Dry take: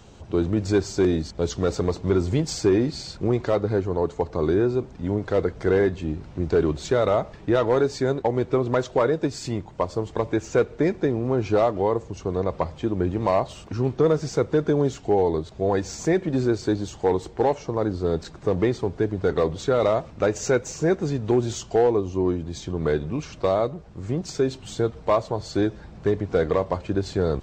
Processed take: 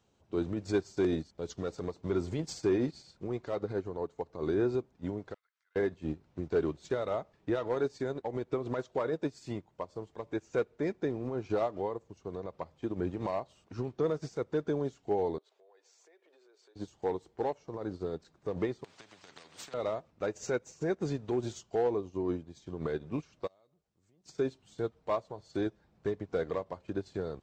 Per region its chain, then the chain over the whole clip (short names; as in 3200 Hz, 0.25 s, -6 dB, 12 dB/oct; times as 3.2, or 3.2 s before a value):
5.34–5.76 HPF 1300 Hz 24 dB/oct + compressor 8:1, threshold -49 dBFS + gate -53 dBFS, range -9 dB
15.38–16.76 Chebyshev high-pass 410 Hz, order 4 + bell 3000 Hz +4.5 dB 1.3 oct + compressor 5:1, threshold -40 dBFS
18.84–19.74 HPF 110 Hz 24 dB/oct + compressor 12:1, threshold -23 dBFS + spectral compressor 4:1
23.47–24.26 pre-emphasis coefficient 0.8 + compressor 3:1, threshold -43 dBFS
whole clip: low shelf 74 Hz -11.5 dB; limiter -19 dBFS; upward expander 2.5:1, over -38 dBFS